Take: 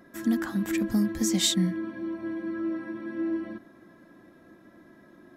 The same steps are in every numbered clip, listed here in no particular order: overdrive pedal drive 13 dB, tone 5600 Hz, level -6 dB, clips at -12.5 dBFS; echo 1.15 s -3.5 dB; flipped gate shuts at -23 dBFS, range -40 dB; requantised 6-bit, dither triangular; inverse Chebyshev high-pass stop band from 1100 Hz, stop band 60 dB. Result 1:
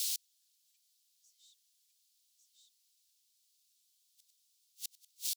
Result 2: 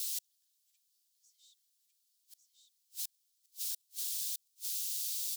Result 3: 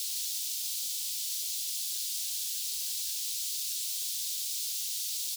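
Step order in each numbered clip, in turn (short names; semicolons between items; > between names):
echo > requantised > overdrive pedal > flipped gate > inverse Chebyshev high-pass; echo > overdrive pedal > requantised > flipped gate > inverse Chebyshev high-pass; flipped gate > echo > requantised > overdrive pedal > inverse Chebyshev high-pass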